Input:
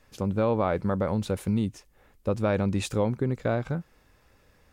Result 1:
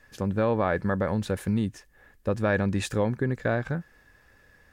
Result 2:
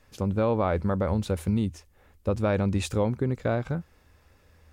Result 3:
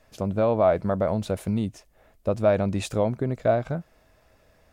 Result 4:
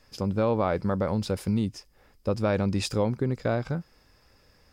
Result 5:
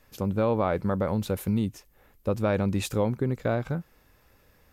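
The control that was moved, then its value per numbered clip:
parametric band, centre frequency: 1,700, 80, 650, 5,000, 13,000 Hertz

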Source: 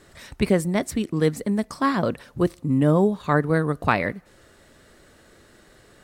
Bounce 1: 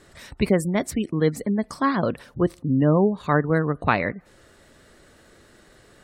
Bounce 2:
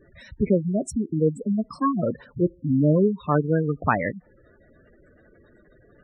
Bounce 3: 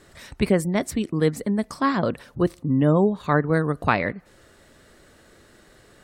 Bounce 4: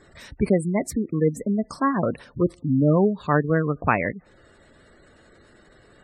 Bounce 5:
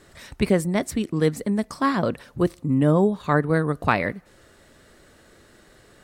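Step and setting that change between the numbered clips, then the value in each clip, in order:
gate on every frequency bin, under each frame's peak: −35, −10, −45, −20, −60 decibels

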